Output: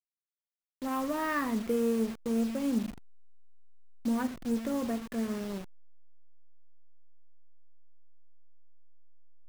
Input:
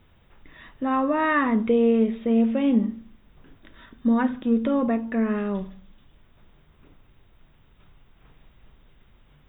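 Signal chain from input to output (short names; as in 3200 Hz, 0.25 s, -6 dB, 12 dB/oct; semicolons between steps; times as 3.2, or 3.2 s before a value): level-crossing sampler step -29 dBFS; gain -9 dB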